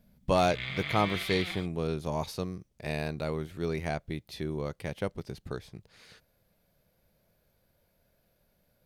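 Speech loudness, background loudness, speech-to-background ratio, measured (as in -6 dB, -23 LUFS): -33.0 LUFS, -35.5 LUFS, 2.5 dB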